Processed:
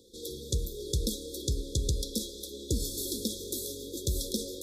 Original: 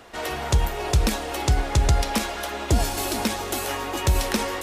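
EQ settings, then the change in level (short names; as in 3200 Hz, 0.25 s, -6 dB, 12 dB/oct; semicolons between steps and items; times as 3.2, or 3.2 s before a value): brick-wall FIR band-stop 550–3300 Hz; elliptic band-stop 990–3100 Hz; low shelf 230 Hz -7 dB; -4.5 dB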